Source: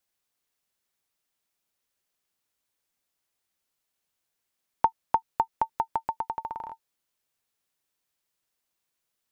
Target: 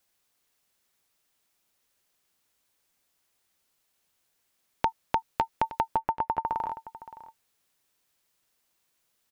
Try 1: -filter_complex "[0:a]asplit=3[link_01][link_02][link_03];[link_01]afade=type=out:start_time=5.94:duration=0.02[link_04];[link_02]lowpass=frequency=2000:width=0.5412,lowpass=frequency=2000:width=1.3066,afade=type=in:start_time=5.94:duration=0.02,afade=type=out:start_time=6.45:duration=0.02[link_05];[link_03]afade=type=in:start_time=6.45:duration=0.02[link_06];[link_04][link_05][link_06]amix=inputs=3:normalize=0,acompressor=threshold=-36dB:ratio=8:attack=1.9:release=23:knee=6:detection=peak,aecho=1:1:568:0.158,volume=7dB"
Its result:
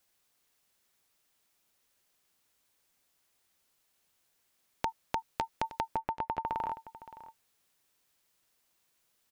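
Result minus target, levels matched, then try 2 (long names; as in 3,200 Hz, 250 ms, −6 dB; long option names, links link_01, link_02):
downward compressor: peak gain reduction +8 dB
-filter_complex "[0:a]asplit=3[link_01][link_02][link_03];[link_01]afade=type=out:start_time=5.94:duration=0.02[link_04];[link_02]lowpass=frequency=2000:width=0.5412,lowpass=frequency=2000:width=1.3066,afade=type=in:start_time=5.94:duration=0.02,afade=type=out:start_time=6.45:duration=0.02[link_05];[link_03]afade=type=in:start_time=6.45:duration=0.02[link_06];[link_04][link_05][link_06]amix=inputs=3:normalize=0,acompressor=threshold=-27dB:ratio=8:attack=1.9:release=23:knee=6:detection=peak,aecho=1:1:568:0.158,volume=7dB"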